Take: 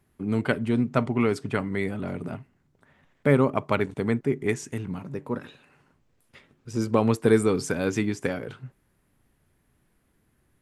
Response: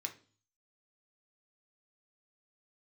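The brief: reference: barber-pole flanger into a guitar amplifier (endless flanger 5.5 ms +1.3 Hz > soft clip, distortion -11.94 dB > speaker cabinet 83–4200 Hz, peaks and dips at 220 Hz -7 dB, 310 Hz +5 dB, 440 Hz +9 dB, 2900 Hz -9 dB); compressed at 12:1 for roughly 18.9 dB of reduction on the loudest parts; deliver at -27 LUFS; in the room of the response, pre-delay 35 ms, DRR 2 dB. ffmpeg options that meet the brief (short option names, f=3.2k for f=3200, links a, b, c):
-filter_complex "[0:a]acompressor=threshold=-34dB:ratio=12,asplit=2[a][b];[1:a]atrim=start_sample=2205,adelay=35[c];[b][c]afir=irnorm=-1:irlink=0,volume=-1dB[d];[a][d]amix=inputs=2:normalize=0,asplit=2[e][f];[f]adelay=5.5,afreqshift=1.3[g];[e][g]amix=inputs=2:normalize=1,asoftclip=threshold=-36dB,highpass=83,equalizer=f=220:t=q:w=4:g=-7,equalizer=f=310:t=q:w=4:g=5,equalizer=f=440:t=q:w=4:g=9,equalizer=f=2.9k:t=q:w=4:g=-9,lowpass=f=4.2k:w=0.5412,lowpass=f=4.2k:w=1.3066,volume=15dB"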